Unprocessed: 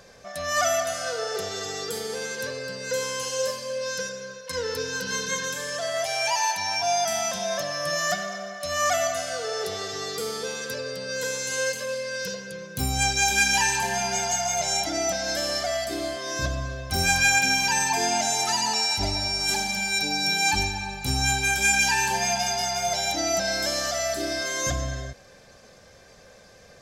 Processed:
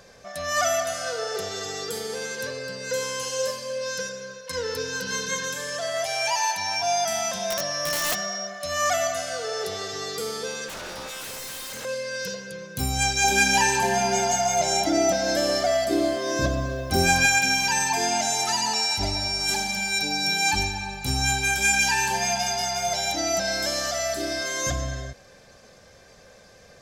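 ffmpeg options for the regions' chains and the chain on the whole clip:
ffmpeg -i in.wav -filter_complex "[0:a]asettb=1/sr,asplit=3[link_01][link_02][link_03];[link_01]atrim=end=7.504[link_04];[link_02]atrim=start=7.5:end=8.47,asetpts=PTS-STARTPTS,afade=type=in:duration=0.004:curve=qsin,afade=type=out:start_time=0.966:duration=0.004:curve=qsin,aeval=exprs='val(0)+0.0282*sin(2*PI*5600*n/s)':channel_layout=same,aeval=exprs='(mod(8.41*val(0)+1,2)-1)/8.41':channel_layout=same[link_05];[link_03]atrim=start=8.466[link_06];[link_04][link_05]acrossfade=duration=0.004:curve1=hsin:curve2=qsin[link_07];[link_07][link_06]acrossfade=duration=0.004:curve1=qsin:curve2=hsin,asettb=1/sr,asplit=3[link_08][link_09][link_10];[link_08]atrim=end=10.684[link_11];[link_09]atrim=start=10.68:end=11.85,asetpts=PTS-STARTPTS,afade=type=in:duration=0.004:curve=qsin,afade=type=out:start_time=1.166:duration=0.004:curve=qsin,equalizer=frequency=230:width=0.46:gain=8,aeval=exprs='0.0282*(abs(mod(val(0)/0.0282+3,4)-2)-1)':channel_layout=same[link_12];[link_10]atrim=start=11.846[link_13];[link_11][link_12]acrossfade=duration=0.004:curve1=hsin:curve2=qsin[link_14];[link_14][link_13]acrossfade=duration=0.004:curve1=qsin:curve2=hsin,asettb=1/sr,asplit=3[link_15][link_16][link_17];[link_15]atrim=end=13.244[link_18];[link_16]atrim=start=13.24:end=17.26,asetpts=PTS-STARTPTS,afade=type=in:duration=0.004:curve=qsin,afade=type=out:start_time=4.016:duration=0.004:curve=qsin,equalizer=frequency=350:width=0.62:gain=10,acrusher=bits=8:mix=0:aa=0.5[link_19];[link_17]atrim=start=17.256[link_20];[link_18][link_19]acrossfade=duration=0.004:curve1=hsin:curve2=qsin[link_21];[link_21][link_20]acrossfade=duration=0.004:curve1=qsin:curve2=hsin" out.wav

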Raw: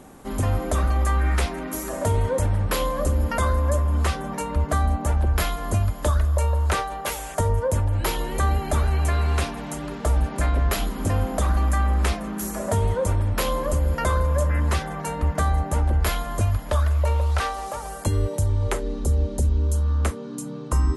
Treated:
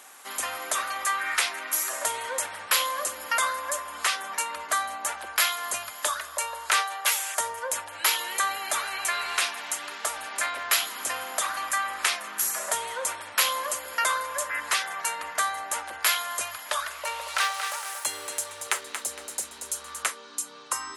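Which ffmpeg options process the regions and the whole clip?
ffmpeg -i in.wav -filter_complex "[0:a]asettb=1/sr,asplit=3[link_01][link_02][link_03];[link_01]atrim=end=16.904[link_04];[link_02]atrim=start=16.9:end=20.03,asetpts=PTS-STARTPTS,afade=type=in:duration=0.004:curve=qsin,afade=type=out:start_time=3.126:duration=0.004:curve=qsin,aeval=exprs='sgn(val(0))*max(abs(val(0))-0.00891,0)':channel_layout=same,aecho=1:1:231|462|693|924:0.398|0.131|0.0434|0.0143,atrim=end_sample=138033[link_05];[link_03]atrim=start=20.026[link_06];[link_04][link_05]acrossfade=duration=0.004:curve1=hsin:curve2=qsin[link_07];[link_07][link_06]acrossfade=duration=0.004:curve1=qsin:curve2=hsin,highpass=1500,acontrast=87" out.wav

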